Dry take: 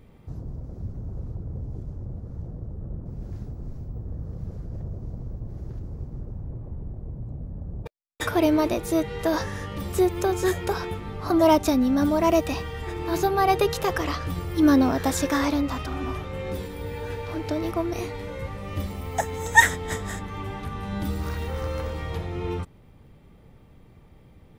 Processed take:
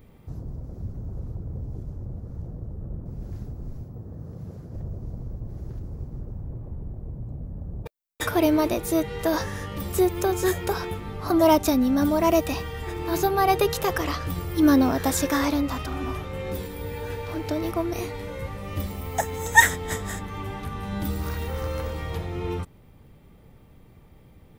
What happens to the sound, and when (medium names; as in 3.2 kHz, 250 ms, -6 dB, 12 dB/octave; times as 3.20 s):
3.83–4.75 s: high-pass 100 Hz
whole clip: treble shelf 12 kHz +11.5 dB